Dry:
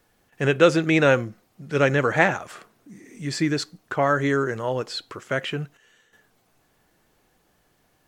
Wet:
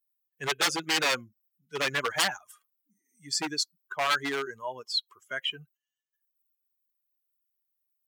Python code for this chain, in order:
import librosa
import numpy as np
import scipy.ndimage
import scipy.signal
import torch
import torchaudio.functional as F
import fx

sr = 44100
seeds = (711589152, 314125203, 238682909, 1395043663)

y = fx.bin_expand(x, sr, power=2.0)
y = 10.0 ** (-21.0 / 20.0) * (np.abs((y / 10.0 ** (-21.0 / 20.0) + 3.0) % 4.0 - 2.0) - 1.0)
y = fx.highpass(y, sr, hz=1500.0, slope=6)
y = y * 10.0 ** (6.0 / 20.0)